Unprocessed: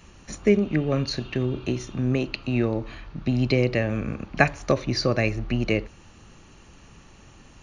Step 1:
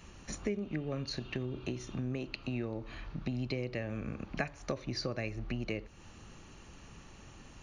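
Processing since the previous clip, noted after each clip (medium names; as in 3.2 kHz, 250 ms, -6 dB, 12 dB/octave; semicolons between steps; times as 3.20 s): compression 3:1, threshold -33 dBFS, peak gain reduction 15.5 dB; trim -3 dB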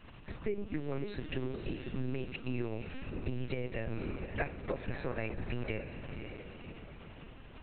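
gate with hold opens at -46 dBFS; echo that smears into a reverb 540 ms, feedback 45%, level -7 dB; LPC vocoder at 8 kHz pitch kept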